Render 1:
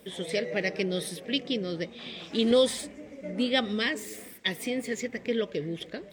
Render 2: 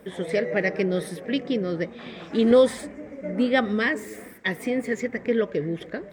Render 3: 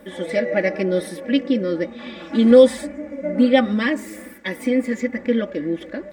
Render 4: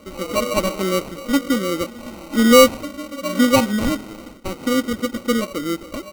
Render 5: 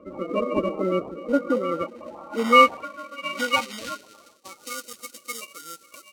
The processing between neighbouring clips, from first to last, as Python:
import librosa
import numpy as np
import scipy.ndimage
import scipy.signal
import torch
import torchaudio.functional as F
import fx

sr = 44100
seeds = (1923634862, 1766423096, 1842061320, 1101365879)

y1 = fx.high_shelf_res(x, sr, hz=2300.0, db=-9.0, q=1.5)
y1 = y1 * librosa.db_to_amplitude(5.5)
y2 = y1 + 0.75 * np.pad(y1, (int(3.5 * sr / 1000.0), 0))[:len(y1)]
y2 = fx.hpss(y2, sr, part='harmonic', gain_db=5)
y2 = y2 * librosa.db_to_amplitude(-1.5)
y3 = fx.sample_hold(y2, sr, seeds[0], rate_hz=1700.0, jitter_pct=0)
y4 = fx.spec_quant(y3, sr, step_db=30)
y4 = fx.filter_sweep_bandpass(y4, sr, from_hz=410.0, to_hz=7500.0, start_s=1.03, end_s=4.94, q=0.76)